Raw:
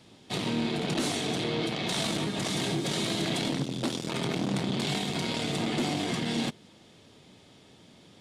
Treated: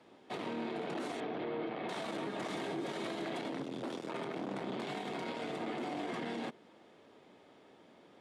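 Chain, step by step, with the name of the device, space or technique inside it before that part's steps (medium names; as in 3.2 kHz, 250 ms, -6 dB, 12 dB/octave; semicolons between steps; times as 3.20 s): 1.20–1.89 s: distance through air 280 m; DJ mixer with the lows and highs turned down (three-band isolator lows -18 dB, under 270 Hz, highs -16 dB, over 2.1 kHz; peak limiter -30.5 dBFS, peak gain reduction 9 dB)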